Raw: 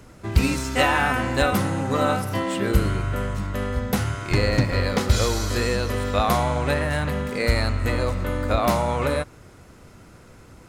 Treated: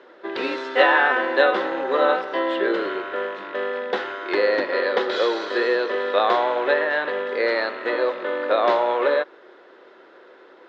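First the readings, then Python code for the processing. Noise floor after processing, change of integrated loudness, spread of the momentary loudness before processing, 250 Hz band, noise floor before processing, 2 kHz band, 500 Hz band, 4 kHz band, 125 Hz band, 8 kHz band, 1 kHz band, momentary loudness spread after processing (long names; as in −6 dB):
−49 dBFS, +1.5 dB, 5 LU, −4.5 dB, −48 dBFS, +4.5 dB, +5.0 dB, −0.5 dB, below −30 dB, below −20 dB, +2.5 dB, 9 LU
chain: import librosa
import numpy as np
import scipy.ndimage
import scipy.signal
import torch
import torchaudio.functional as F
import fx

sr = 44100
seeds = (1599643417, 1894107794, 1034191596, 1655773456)

y = fx.rattle_buzz(x, sr, strikes_db=-24.0, level_db=-30.0)
y = fx.cabinet(y, sr, low_hz=360.0, low_slope=24, high_hz=3700.0, hz=(370.0, 540.0, 950.0, 1700.0, 2400.0, 3600.0), db=(9, 6, 3, 8, -5, 6))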